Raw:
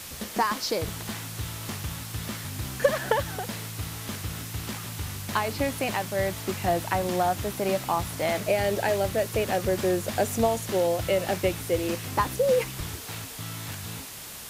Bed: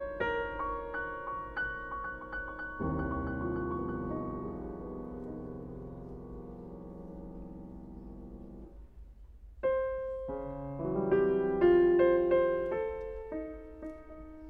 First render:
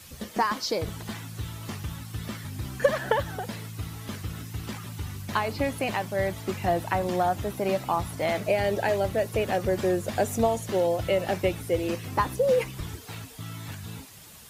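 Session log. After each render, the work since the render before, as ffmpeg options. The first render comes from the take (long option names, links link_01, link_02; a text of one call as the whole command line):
ffmpeg -i in.wav -af "afftdn=noise_reduction=10:noise_floor=-40" out.wav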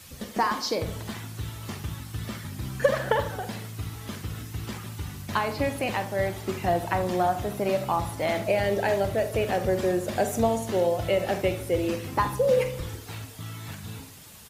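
ffmpeg -i in.wav -filter_complex "[0:a]asplit=2[link_01][link_02];[link_02]adelay=45,volume=-12dB[link_03];[link_01][link_03]amix=inputs=2:normalize=0,asplit=2[link_04][link_05];[link_05]adelay=75,lowpass=frequency=2000:poles=1,volume=-11.5dB,asplit=2[link_06][link_07];[link_07]adelay=75,lowpass=frequency=2000:poles=1,volume=0.54,asplit=2[link_08][link_09];[link_09]adelay=75,lowpass=frequency=2000:poles=1,volume=0.54,asplit=2[link_10][link_11];[link_11]adelay=75,lowpass=frequency=2000:poles=1,volume=0.54,asplit=2[link_12][link_13];[link_13]adelay=75,lowpass=frequency=2000:poles=1,volume=0.54,asplit=2[link_14][link_15];[link_15]adelay=75,lowpass=frequency=2000:poles=1,volume=0.54[link_16];[link_04][link_06][link_08][link_10][link_12][link_14][link_16]amix=inputs=7:normalize=0" out.wav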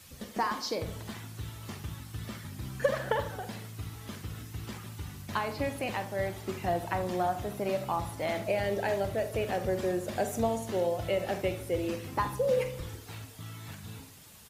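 ffmpeg -i in.wav -af "volume=-5.5dB" out.wav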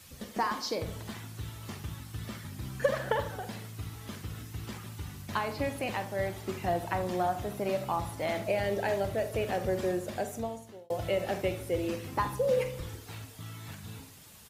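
ffmpeg -i in.wav -filter_complex "[0:a]asplit=2[link_01][link_02];[link_01]atrim=end=10.9,asetpts=PTS-STARTPTS,afade=type=out:start_time=9.9:duration=1[link_03];[link_02]atrim=start=10.9,asetpts=PTS-STARTPTS,afade=type=in:duration=0.004:curve=hsin[link_04];[link_03][link_04]concat=n=2:v=0:a=1" out.wav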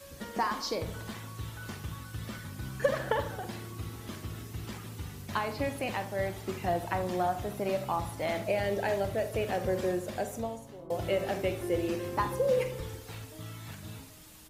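ffmpeg -i in.wav -i bed.wav -filter_complex "[1:a]volume=-13.5dB[link_01];[0:a][link_01]amix=inputs=2:normalize=0" out.wav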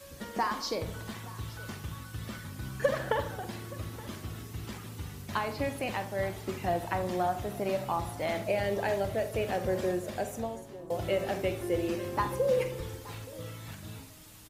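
ffmpeg -i in.wav -af "aecho=1:1:872:0.1" out.wav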